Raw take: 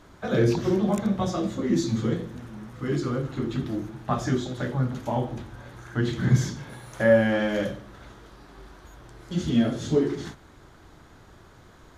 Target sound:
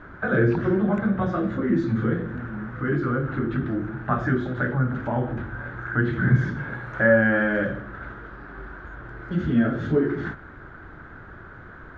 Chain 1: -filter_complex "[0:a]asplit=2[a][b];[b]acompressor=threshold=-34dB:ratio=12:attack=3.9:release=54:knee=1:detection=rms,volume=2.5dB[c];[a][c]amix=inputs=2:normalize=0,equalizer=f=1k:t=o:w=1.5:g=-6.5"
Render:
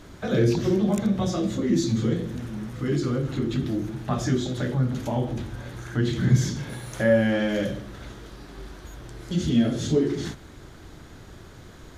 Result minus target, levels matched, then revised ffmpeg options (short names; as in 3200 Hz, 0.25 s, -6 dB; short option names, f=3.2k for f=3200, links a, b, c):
2000 Hz band -8.5 dB
-filter_complex "[0:a]asplit=2[a][b];[b]acompressor=threshold=-34dB:ratio=12:attack=3.9:release=54:knee=1:detection=rms,volume=2.5dB[c];[a][c]amix=inputs=2:normalize=0,lowpass=f=1.5k:t=q:w=4.8,equalizer=f=1k:t=o:w=1.5:g=-6.5"